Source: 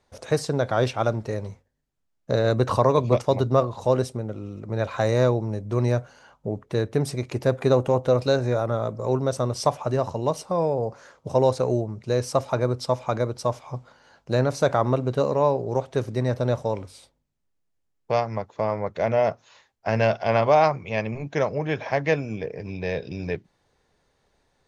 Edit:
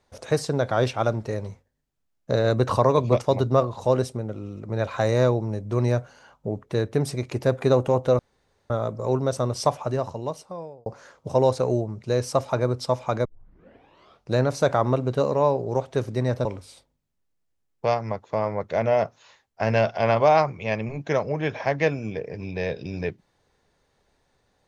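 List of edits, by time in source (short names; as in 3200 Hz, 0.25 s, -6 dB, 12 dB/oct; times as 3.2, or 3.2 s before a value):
8.19–8.7 room tone
9.72–10.86 fade out
13.25 tape start 1.10 s
16.45–16.71 cut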